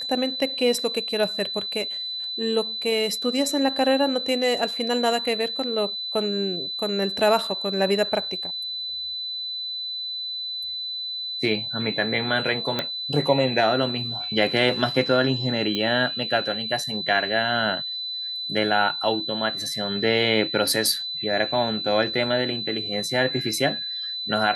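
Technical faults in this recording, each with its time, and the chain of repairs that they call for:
whine 4 kHz -28 dBFS
12.79 s: pop -10 dBFS
15.75 s: pop -13 dBFS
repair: de-click; band-stop 4 kHz, Q 30

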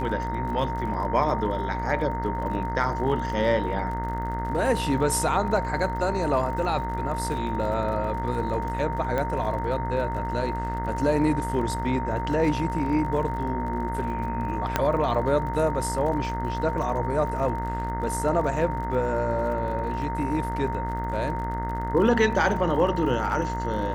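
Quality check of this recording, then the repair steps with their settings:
buzz 60 Hz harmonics 35 -31 dBFS
crackle 48 per s -35 dBFS
whine 920 Hz -30 dBFS
9.18 s: pop -15 dBFS
14.76 s: pop -7 dBFS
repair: de-click; de-hum 60 Hz, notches 35; band-stop 920 Hz, Q 30

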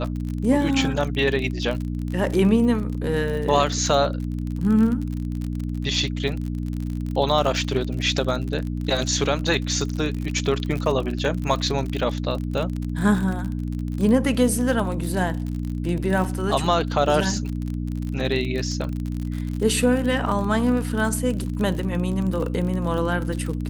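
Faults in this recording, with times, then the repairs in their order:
crackle 44 per s -27 dBFS
hum 60 Hz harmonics 5 -27 dBFS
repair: de-click; de-hum 60 Hz, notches 5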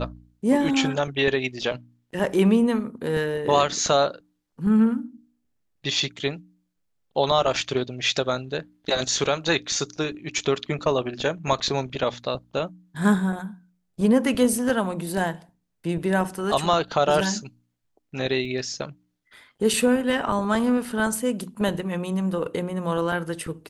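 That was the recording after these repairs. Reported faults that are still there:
nothing left

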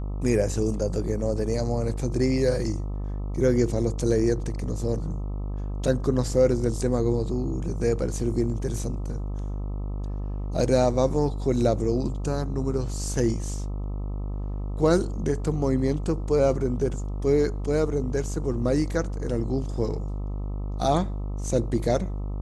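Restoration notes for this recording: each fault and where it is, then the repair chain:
buzz 50 Hz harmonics 26 -30 dBFS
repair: de-hum 50 Hz, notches 26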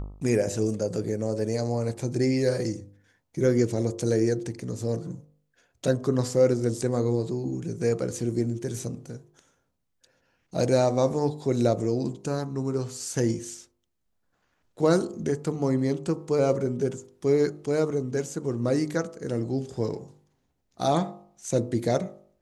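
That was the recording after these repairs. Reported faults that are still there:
nothing left

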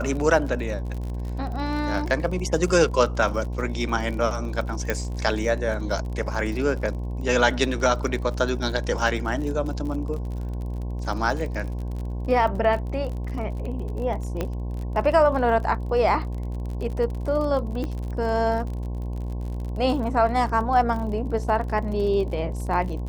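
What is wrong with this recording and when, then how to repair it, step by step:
buzz 60 Hz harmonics 18 -29 dBFS
crackle 42 per s -32 dBFS
4.90 s: pop -10 dBFS
14.41 s: pop -13 dBFS
17.84 s: pop -18 dBFS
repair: de-click; de-hum 60 Hz, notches 18

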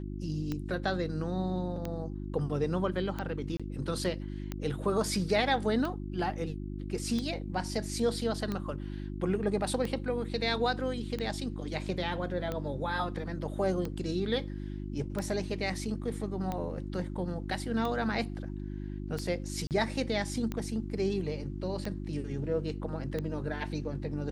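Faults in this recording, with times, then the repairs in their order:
hum 50 Hz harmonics 7 -38 dBFS
tick 45 rpm -21 dBFS
3.57–3.60 s: dropout 26 ms
19.67–19.71 s: dropout 38 ms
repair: de-click; de-hum 50 Hz, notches 7; interpolate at 3.57 s, 26 ms; interpolate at 19.67 s, 38 ms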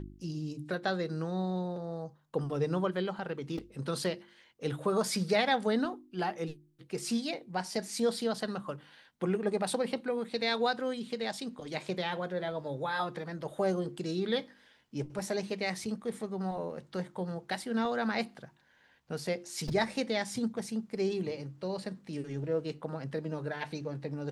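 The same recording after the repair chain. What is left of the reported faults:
nothing left

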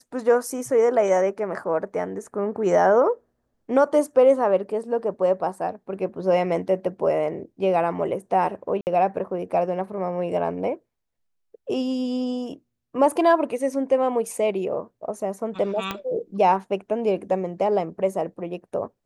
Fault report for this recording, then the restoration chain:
8.81–8.87 s: dropout 59 ms
15.91 s: pop -12 dBFS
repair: de-click; interpolate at 8.81 s, 59 ms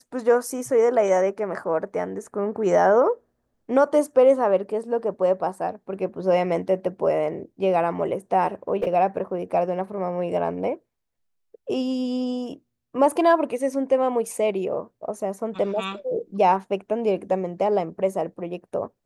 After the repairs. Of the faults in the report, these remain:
15.91 s: pop

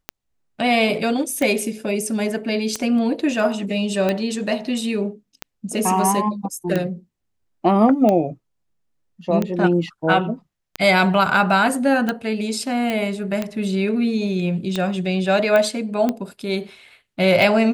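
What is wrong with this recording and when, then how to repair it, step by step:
tick 45 rpm -9 dBFS
12.90 s: pop -11 dBFS
15.56 s: pop -8 dBFS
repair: de-click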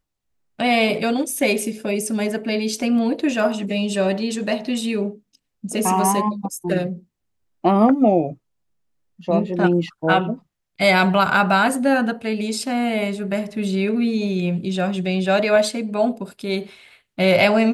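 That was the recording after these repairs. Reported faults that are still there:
nothing left

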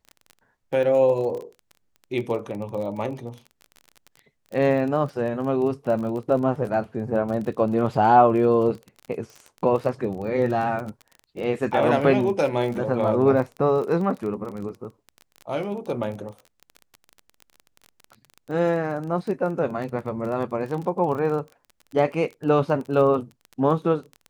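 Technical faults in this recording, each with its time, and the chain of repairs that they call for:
crackle 27 per s -31 dBFS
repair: de-click

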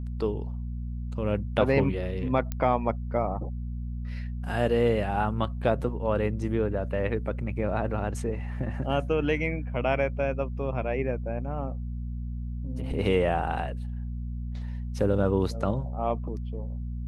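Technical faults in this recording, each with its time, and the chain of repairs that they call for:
hum 60 Hz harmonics 4 -33 dBFS
2.52 s: pop -17 dBFS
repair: de-click; de-hum 60 Hz, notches 4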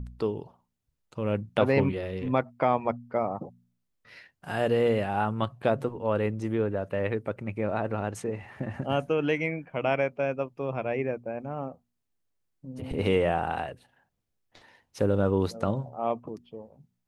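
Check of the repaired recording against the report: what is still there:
nothing left

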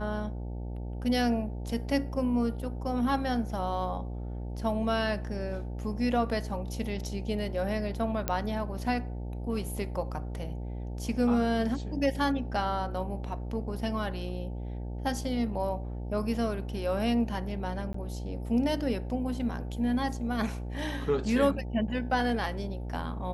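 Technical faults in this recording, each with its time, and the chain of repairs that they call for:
buzz 60 Hz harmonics 15 -36 dBFS
8.28 s: pop -12 dBFS
17.93–17.94 s: dropout 14 ms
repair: de-click; de-hum 60 Hz, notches 15; interpolate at 17.93 s, 14 ms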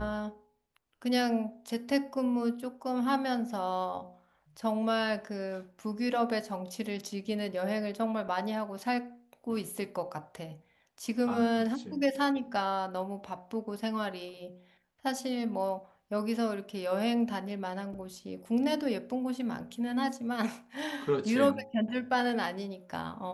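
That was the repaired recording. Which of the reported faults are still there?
nothing left

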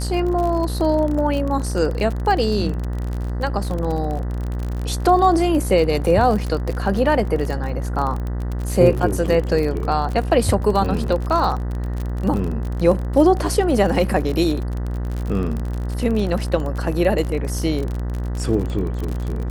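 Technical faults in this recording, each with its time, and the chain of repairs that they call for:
buzz 60 Hz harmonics 33 -24 dBFS
crackle 39 per s -24 dBFS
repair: de-click; de-hum 60 Hz, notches 33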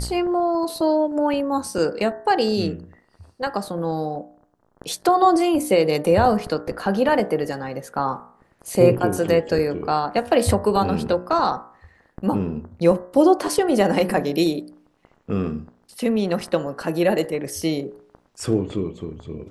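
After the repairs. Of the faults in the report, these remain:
nothing left

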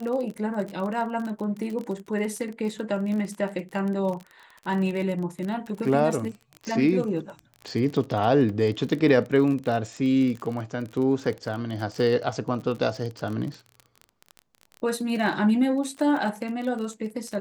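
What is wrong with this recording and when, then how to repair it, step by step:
crackle 34 per s -31 dBFS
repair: de-click

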